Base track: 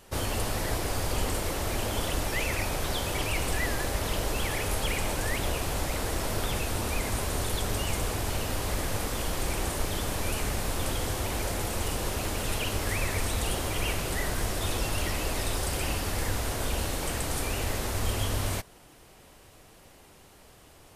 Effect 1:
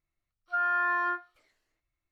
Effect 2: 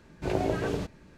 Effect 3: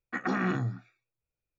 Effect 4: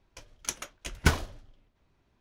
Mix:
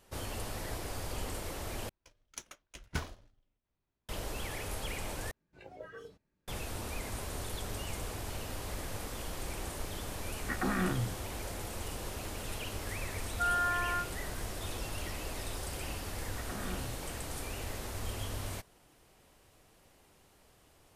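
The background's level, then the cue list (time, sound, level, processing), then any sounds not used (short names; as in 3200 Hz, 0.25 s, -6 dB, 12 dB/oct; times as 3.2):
base track -9.5 dB
1.89 replace with 4 -15 dB + sample leveller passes 1
5.31 replace with 2 -12 dB + spectral noise reduction 16 dB
10.36 add 3 -3.5 dB
12.87 add 1 -5 dB + comb 7.1 ms, depth 32%
16.24 add 3 -14.5 dB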